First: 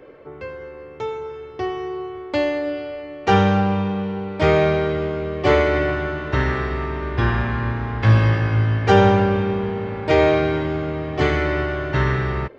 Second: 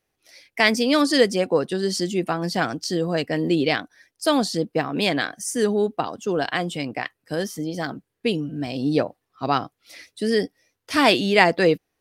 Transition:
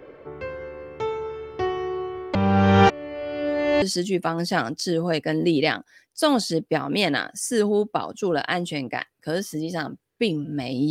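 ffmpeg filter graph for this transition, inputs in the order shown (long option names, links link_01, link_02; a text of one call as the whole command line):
ffmpeg -i cue0.wav -i cue1.wav -filter_complex "[0:a]apad=whole_dur=10.9,atrim=end=10.9,asplit=2[link_01][link_02];[link_01]atrim=end=2.352[link_03];[link_02]atrim=start=2.348:end=3.822,asetpts=PTS-STARTPTS,areverse[link_04];[1:a]atrim=start=1.858:end=8.94[link_05];[link_03][link_04]acrossfade=duration=0.004:curve1=hsin:curve2=hsin[link_06];[link_06][link_05]acrossfade=duration=0.004:curve1=hsin:curve2=hsin" out.wav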